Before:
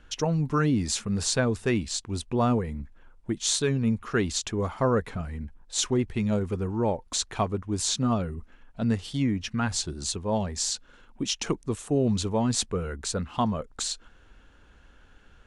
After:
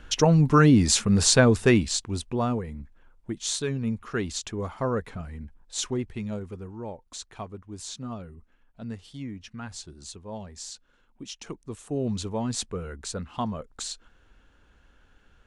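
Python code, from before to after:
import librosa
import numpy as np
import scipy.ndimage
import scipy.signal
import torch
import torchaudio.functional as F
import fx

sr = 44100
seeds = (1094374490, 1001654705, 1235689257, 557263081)

y = fx.gain(x, sr, db=fx.line((1.66, 7.0), (2.52, -3.5), (5.89, -3.5), (6.8, -11.0), (11.44, -11.0), (12.04, -4.0)))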